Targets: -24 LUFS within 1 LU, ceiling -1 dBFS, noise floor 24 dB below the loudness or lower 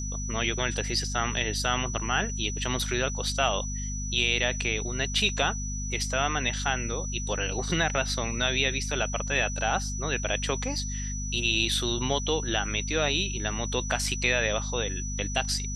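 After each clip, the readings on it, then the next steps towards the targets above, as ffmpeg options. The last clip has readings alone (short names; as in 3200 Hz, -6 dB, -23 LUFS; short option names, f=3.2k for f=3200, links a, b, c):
hum 50 Hz; harmonics up to 250 Hz; hum level -31 dBFS; steady tone 5900 Hz; tone level -36 dBFS; loudness -27.5 LUFS; peak -10.0 dBFS; loudness target -24.0 LUFS
-> -af "bandreject=f=50:t=h:w=6,bandreject=f=100:t=h:w=6,bandreject=f=150:t=h:w=6,bandreject=f=200:t=h:w=6,bandreject=f=250:t=h:w=6"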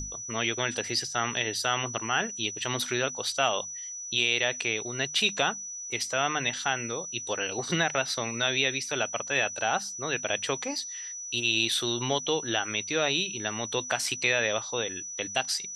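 hum none; steady tone 5900 Hz; tone level -36 dBFS
-> -af "bandreject=f=5.9k:w=30"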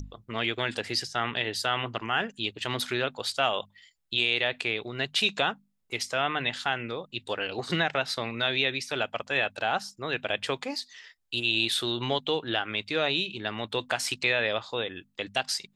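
steady tone none; loudness -28.5 LUFS; peak -10.5 dBFS; loudness target -24.0 LUFS
-> -af "volume=4.5dB"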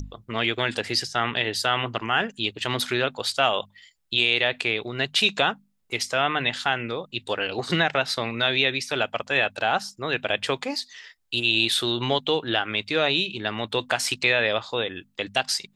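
loudness -24.0 LUFS; peak -6.0 dBFS; noise floor -65 dBFS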